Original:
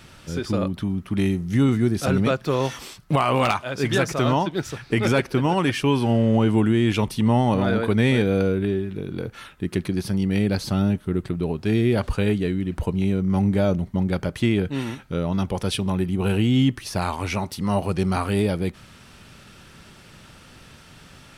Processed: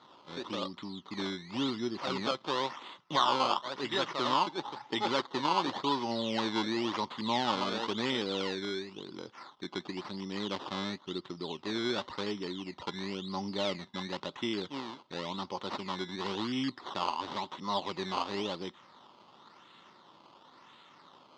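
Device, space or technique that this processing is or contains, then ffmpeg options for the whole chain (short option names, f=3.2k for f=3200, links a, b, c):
circuit-bent sampling toy: -filter_complex "[0:a]acrusher=samples=16:mix=1:aa=0.000001:lfo=1:lforange=16:lforate=0.95,highpass=430,equalizer=f=460:t=q:w=4:g=-8,equalizer=f=670:t=q:w=4:g=-8,equalizer=f=1k:t=q:w=4:g=5,equalizer=f=1.6k:t=q:w=4:g=-9,equalizer=f=2.4k:t=q:w=4:g=-9,equalizer=f=3.6k:t=q:w=4:g=5,lowpass=f=4.7k:w=0.5412,lowpass=f=4.7k:w=1.3066,asettb=1/sr,asplit=3[a][b][c];[a]atrim=end=4.494[d];[b]atrim=start=4.49:end=5.08,asetpts=PTS-STARTPTS,afade=t=in:d=0.004:c=qsin,afade=t=out:st=0.586:d=0.004:c=qsin,equalizer=f=840:w=7.8:g=13.5[e];[c]atrim=start=5.076[f];[d][e]acrossfade=d=0.004:c1=hsin:c2=qsin[g];[g][f]acrossfade=d=0.004:c1=qsin:c2=hsin,volume=-4dB"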